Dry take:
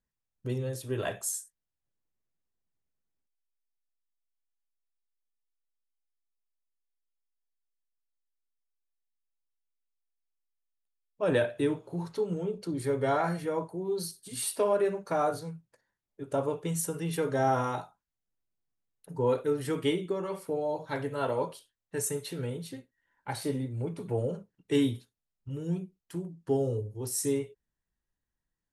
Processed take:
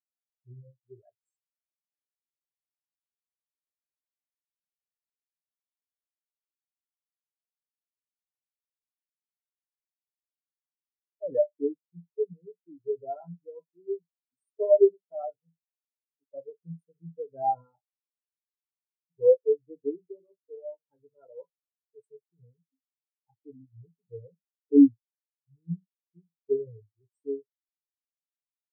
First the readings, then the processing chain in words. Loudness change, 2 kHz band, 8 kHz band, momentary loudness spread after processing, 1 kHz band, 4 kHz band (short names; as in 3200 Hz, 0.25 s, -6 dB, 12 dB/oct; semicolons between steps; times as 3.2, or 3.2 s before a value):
+4.5 dB, under -40 dB, under -40 dB, 24 LU, -3.5 dB, under -40 dB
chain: spectral expander 4:1; gain +7 dB